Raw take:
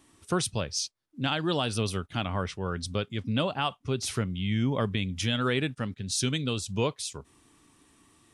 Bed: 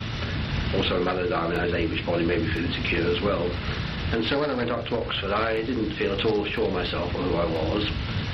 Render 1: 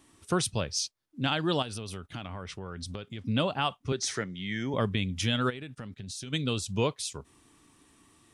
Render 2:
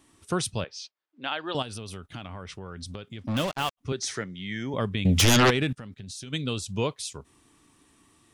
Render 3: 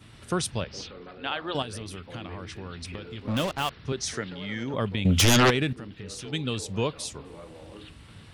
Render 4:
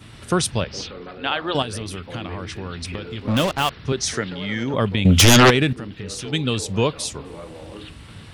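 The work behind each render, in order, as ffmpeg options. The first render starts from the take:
ffmpeg -i in.wav -filter_complex "[0:a]asettb=1/sr,asplit=3[link_01][link_02][link_03];[link_01]atrim=end=1.624[link_04];[link_02]atrim=start=1.62:end=3.26,asetpts=PTS-STARTPTS,afade=type=in:duration=0.004:curve=qsin,afade=type=out:start_time=1.636:duration=0.004:curve=qsin,acompressor=threshold=-34dB:ratio=6:attack=3.2:release=140:knee=1:detection=peak[link_05];[link_03]atrim=start=3.256[link_06];[link_04][link_05]acrossfade=duration=0.004:curve1=hsin:curve2=qsin[link_07];[link_07][link_06]acrossfade=duration=0.004:curve1=qsin:curve2=hsin,asettb=1/sr,asplit=3[link_08][link_09][link_10];[link_08]atrim=end=3.924[link_11];[link_09]atrim=start=3.92:end=4.74,asetpts=PTS-STARTPTS,afade=type=in:duration=0.004:curve=qsin,afade=type=out:start_time=0.816:duration=0.004:curve=qsin,highpass=210,equalizer=frequency=240:width_type=q:width=4:gain=-6,equalizer=frequency=1100:width_type=q:width=4:gain=-5,equalizer=frequency=1800:width_type=q:width=4:gain=10,equalizer=frequency=2700:width_type=q:width=4:gain=-7,equalizer=frequency=6000:width_type=q:width=4:gain=6,lowpass=frequency=8700:width=0.5412,lowpass=frequency=8700:width=1.3066[link_12];[link_10]atrim=start=4.736[link_13];[link_11][link_12]acrossfade=duration=0.004:curve1=hsin:curve2=qsin[link_14];[link_14][link_13]acrossfade=duration=0.004:curve1=qsin:curve2=hsin,asplit=3[link_15][link_16][link_17];[link_15]afade=type=out:start_time=5.49:duration=0.02[link_18];[link_16]acompressor=threshold=-36dB:ratio=12:attack=3.2:release=140:knee=1:detection=peak,afade=type=in:start_time=5.49:duration=0.02,afade=type=out:start_time=6.32:duration=0.02[link_19];[link_17]afade=type=in:start_time=6.32:duration=0.02[link_20];[link_18][link_19][link_20]amix=inputs=3:normalize=0" out.wav
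ffmpeg -i in.wav -filter_complex "[0:a]asettb=1/sr,asplit=3[link_01][link_02][link_03];[link_01]atrim=end=0.644[link_04];[link_02]atrim=start=0.64:end=1.55,asetpts=PTS-STARTPTS,afade=type=in:duration=0.004:curve=qsin,afade=type=out:start_time=0.906:duration=0.004:curve=qsin,highpass=480,lowpass=3300[link_05];[link_03]atrim=start=1.546[link_06];[link_04][link_05]acrossfade=duration=0.004:curve1=hsin:curve2=qsin[link_07];[link_07][link_06]acrossfade=duration=0.004:curve1=qsin:curve2=hsin,asplit=3[link_08][link_09][link_10];[link_08]afade=type=out:start_time=3.26:duration=0.02[link_11];[link_09]acrusher=bits=4:mix=0:aa=0.5,afade=type=in:start_time=3.26:duration=0.02,afade=type=out:start_time=3.77:duration=0.02[link_12];[link_10]afade=type=in:start_time=3.77:duration=0.02[link_13];[link_11][link_12][link_13]amix=inputs=3:normalize=0,asettb=1/sr,asplit=3[link_14][link_15][link_16];[link_14]atrim=end=5.054[link_17];[link_15]atrim=start=5.05:end=5.73,asetpts=PTS-STARTPTS,afade=type=in:duration=0.004:curve=qsin,afade=type=out:start_time=0.676:duration=0.004:curve=qsin,aeval=exprs='0.178*sin(PI/2*3.98*val(0)/0.178)':channel_layout=same[link_18];[link_16]atrim=start=5.726[link_19];[link_17][link_18]acrossfade=duration=0.004:curve1=hsin:curve2=qsin[link_20];[link_20][link_19]acrossfade=duration=0.004:curve1=qsin:curve2=hsin" out.wav
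ffmpeg -i in.wav -i bed.wav -filter_complex "[1:a]volume=-20dB[link_01];[0:a][link_01]amix=inputs=2:normalize=0" out.wav
ffmpeg -i in.wav -af "volume=7.5dB" out.wav

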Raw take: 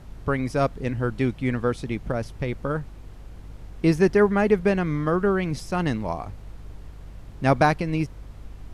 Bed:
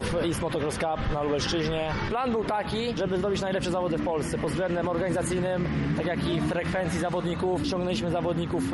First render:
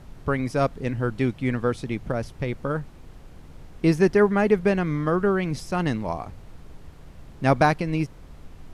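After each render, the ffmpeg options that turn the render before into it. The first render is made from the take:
ffmpeg -i in.wav -af "bandreject=frequency=50:width_type=h:width=4,bandreject=frequency=100:width_type=h:width=4" out.wav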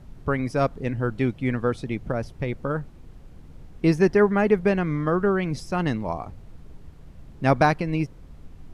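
ffmpeg -i in.wav -af "afftdn=noise_reduction=6:noise_floor=-46" out.wav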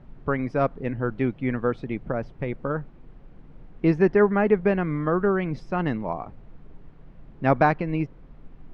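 ffmpeg -i in.wav -af "lowpass=2400,equalizer=frequency=75:width_type=o:width=0.91:gain=-10.5" out.wav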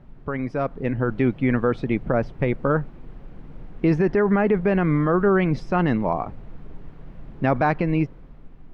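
ffmpeg -i in.wav -af "alimiter=limit=-17.5dB:level=0:latency=1:release=28,dynaudnorm=framelen=130:gausssize=13:maxgain=7dB" out.wav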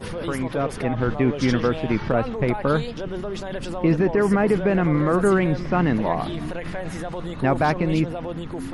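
ffmpeg -i in.wav -i bed.wav -filter_complex "[1:a]volume=-3.5dB[link_01];[0:a][link_01]amix=inputs=2:normalize=0" out.wav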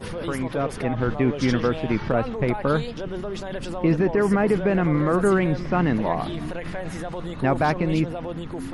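ffmpeg -i in.wav -af "volume=-1dB" out.wav

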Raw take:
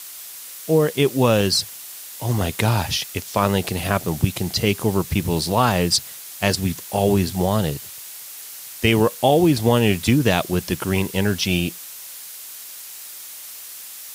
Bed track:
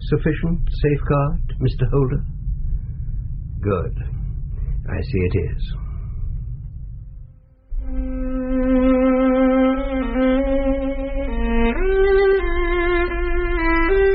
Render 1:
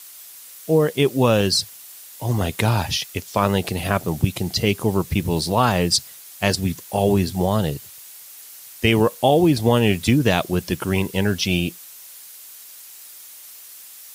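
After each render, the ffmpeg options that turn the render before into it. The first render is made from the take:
ffmpeg -i in.wav -af "afftdn=noise_reduction=6:noise_floor=-37" out.wav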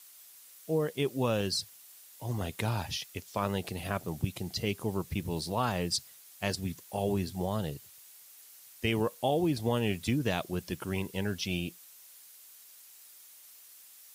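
ffmpeg -i in.wav -af "volume=-12.5dB" out.wav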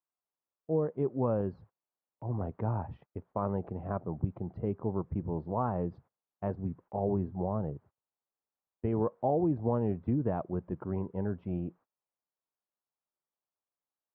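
ffmpeg -i in.wav -af "lowpass=frequency=1100:width=0.5412,lowpass=frequency=1100:width=1.3066,agate=range=-24dB:threshold=-54dB:ratio=16:detection=peak" out.wav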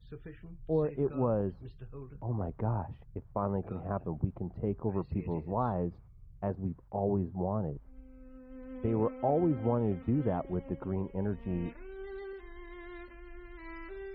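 ffmpeg -i in.wav -i bed.wav -filter_complex "[1:a]volume=-28dB[link_01];[0:a][link_01]amix=inputs=2:normalize=0" out.wav

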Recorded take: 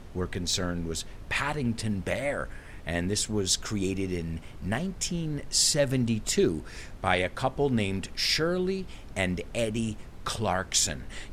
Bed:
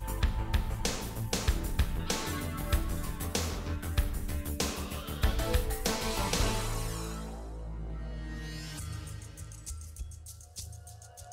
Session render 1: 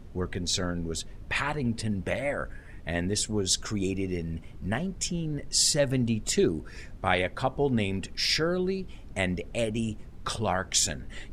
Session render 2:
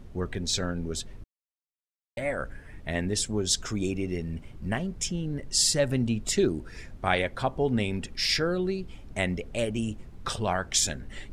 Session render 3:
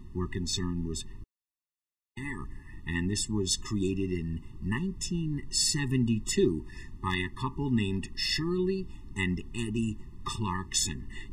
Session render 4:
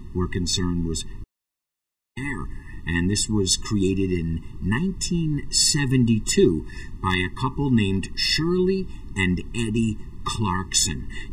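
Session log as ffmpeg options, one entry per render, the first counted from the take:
ffmpeg -i in.wav -af "afftdn=noise_reduction=8:noise_floor=-45" out.wav
ffmpeg -i in.wav -filter_complex "[0:a]asplit=3[link_01][link_02][link_03];[link_01]atrim=end=1.24,asetpts=PTS-STARTPTS,afade=type=out:start_time=1.236:duration=0.004:curve=hsin[link_04];[link_02]atrim=start=1.24:end=2.17,asetpts=PTS-STARTPTS,volume=0[link_05];[link_03]atrim=start=2.17,asetpts=PTS-STARTPTS,afade=type=in:duration=0.004:curve=hsin[link_06];[link_04][link_05][link_06]concat=n=3:v=0:a=1" out.wav
ffmpeg -i in.wav -af "asoftclip=type=hard:threshold=-11.5dB,afftfilt=real='re*eq(mod(floor(b*sr/1024/420),2),0)':imag='im*eq(mod(floor(b*sr/1024/420),2),0)':win_size=1024:overlap=0.75" out.wav
ffmpeg -i in.wav -af "volume=8dB" out.wav

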